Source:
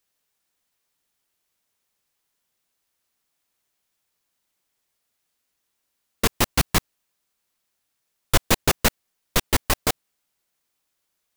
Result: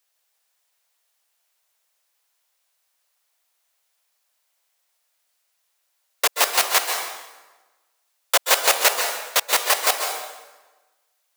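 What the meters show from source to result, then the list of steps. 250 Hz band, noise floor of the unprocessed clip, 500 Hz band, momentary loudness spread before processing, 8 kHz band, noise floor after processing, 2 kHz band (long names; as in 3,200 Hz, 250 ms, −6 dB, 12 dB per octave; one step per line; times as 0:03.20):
−17.5 dB, −77 dBFS, +2.0 dB, 6 LU, +5.5 dB, −72 dBFS, +5.0 dB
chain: Chebyshev high-pass filter 580 Hz, order 3
dense smooth reverb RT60 1.2 s, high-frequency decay 0.8×, pre-delay 120 ms, DRR 3.5 dB
level +4 dB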